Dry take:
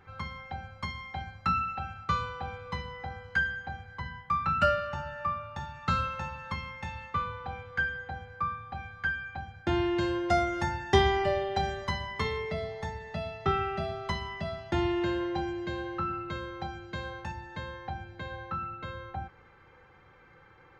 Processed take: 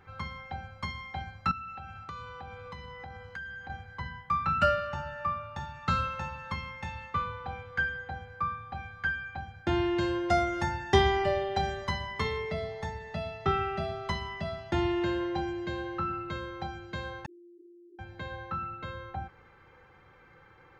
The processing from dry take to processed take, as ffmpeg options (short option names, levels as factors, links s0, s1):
-filter_complex "[0:a]asettb=1/sr,asplit=3[s0][s1][s2];[s0]atrim=end=1.514[s3];[s1]atrim=start=1.51:end=3.7,asetpts=PTS-STARTPTS,afade=t=in:d=0.004:c=qsin,afade=t=out:st=2.186:d=0.004:c=qsin,acompressor=threshold=0.01:ratio=4:attack=3.2:release=140:knee=1:detection=peak[s4];[s2]atrim=start=3.696[s5];[s3][s4]acrossfade=d=0.004:c1=hsin:c2=qsin[s6];[s6][s5]acrossfade=d=0.004:c1=qsin:c2=hsin,asettb=1/sr,asplit=3[s7][s8][s9];[s7]atrim=end=17.264[s10];[s8]atrim=start=17.26:end=17.99,asetpts=PTS-STARTPTS,afade=t=in:d=0.004:c=qsin,afade=t=out:st=0.726:d=0.004:c=qsin,asuperpass=centerf=350:order=20:qfactor=3.4[s11];[s9]atrim=start=17.986[s12];[s10][s11]acrossfade=d=0.004:c1=hsin:c2=qsin[s13];[s13][s12]acrossfade=d=0.004:c1=qsin:c2=hsin"